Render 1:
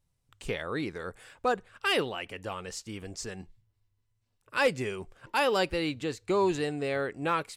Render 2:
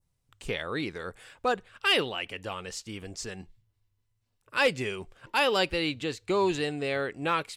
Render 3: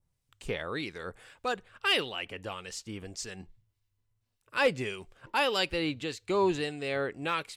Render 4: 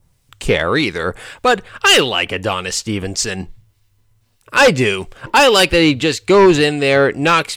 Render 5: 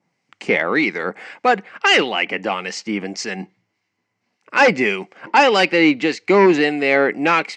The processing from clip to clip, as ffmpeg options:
-af "adynamicequalizer=threshold=0.00501:dfrequency=3200:dqfactor=1.1:tfrequency=3200:tqfactor=1.1:attack=5:release=100:ratio=0.375:range=3:mode=boostabove:tftype=bell"
-filter_complex "[0:a]acrossover=split=1700[s0][s1];[s0]aeval=exprs='val(0)*(1-0.5/2+0.5/2*cos(2*PI*1.7*n/s))':c=same[s2];[s1]aeval=exprs='val(0)*(1-0.5/2-0.5/2*cos(2*PI*1.7*n/s))':c=same[s3];[s2][s3]amix=inputs=2:normalize=0"
-af "aeval=exprs='0.211*sin(PI/2*2.24*val(0)/0.211)':c=same,volume=2.82"
-af "highpass=f=190:w=0.5412,highpass=f=190:w=1.3066,equalizer=f=200:t=q:w=4:g=6,equalizer=f=310:t=q:w=4:g=4,equalizer=f=780:t=q:w=4:g=7,equalizer=f=2100:t=q:w=4:g=10,equalizer=f=3600:t=q:w=4:g=-9,lowpass=f=5900:w=0.5412,lowpass=f=5900:w=1.3066,volume=0.562"

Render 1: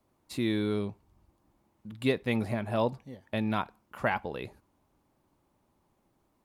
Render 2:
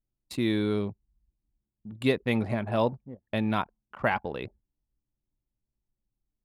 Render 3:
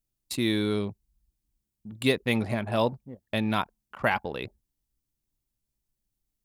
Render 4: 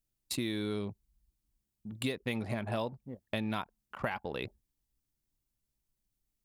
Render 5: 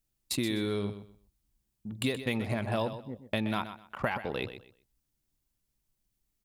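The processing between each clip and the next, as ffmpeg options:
-af "anlmdn=0.1,volume=1.33"
-af "highshelf=f=3500:g=11"
-af "acompressor=threshold=0.0355:ratio=10,volume=0.841"
-af "aecho=1:1:126|252|378:0.266|0.0612|0.0141,volume=1.5"

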